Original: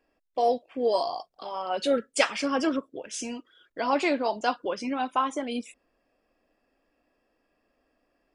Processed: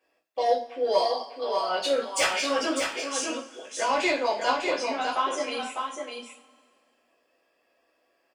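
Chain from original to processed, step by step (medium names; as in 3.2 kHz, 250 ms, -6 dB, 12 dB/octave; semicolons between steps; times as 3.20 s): high-pass 860 Hz 6 dB/octave; saturation -21.5 dBFS, distortion -15 dB; delay 600 ms -5.5 dB; two-slope reverb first 0.3 s, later 2 s, from -22 dB, DRR -6 dB; trim -1 dB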